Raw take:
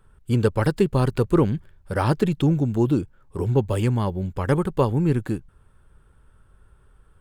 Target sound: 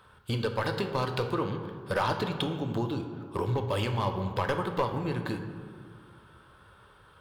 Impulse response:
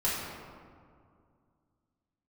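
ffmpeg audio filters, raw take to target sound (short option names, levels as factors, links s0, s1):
-filter_complex "[0:a]highpass=140,acompressor=threshold=0.0282:ratio=6,equalizer=f=250:t=o:w=1:g=-8,equalizer=f=1000:t=o:w=1:g=5,equalizer=f=4000:t=o:w=1:g=11,equalizer=f=8000:t=o:w=1:g=-8,volume=18.8,asoftclip=hard,volume=0.0531,asplit=2[s0][s1];[1:a]atrim=start_sample=2205,asetrate=52920,aresample=44100[s2];[s1][s2]afir=irnorm=-1:irlink=0,volume=0.299[s3];[s0][s3]amix=inputs=2:normalize=0,volume=1.58"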